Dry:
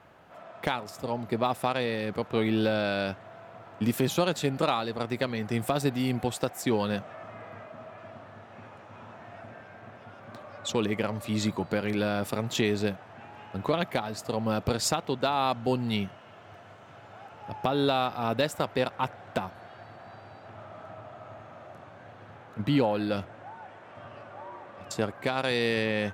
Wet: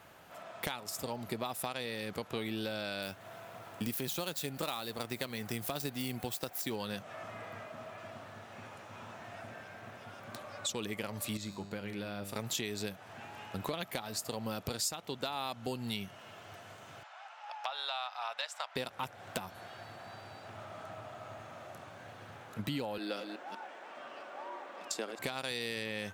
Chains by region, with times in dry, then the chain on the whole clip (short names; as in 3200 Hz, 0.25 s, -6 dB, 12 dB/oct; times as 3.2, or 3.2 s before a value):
3.02–6.76 median filter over 5 samples + high shelf 9100 Hz +7.5 dB
11.37–12.36 high shelf 4500 Hz -10 dB + resonator 100 Hz, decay 0.89 s, mix 70%
17.03–18.76 inverse Chebyshev high-pass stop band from 360 Hz + air absorption 110 m
22.98–25.19 reverse delay 0.19 s, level -8.5 dB + HPF 250 Hz 24 dB/oct + bell 13000 Hz -10 dB 1.2 oct
whole clip: pre-emphasis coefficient 0.8; compressor 4:1, threshold -46 dBFS; gain +11 dB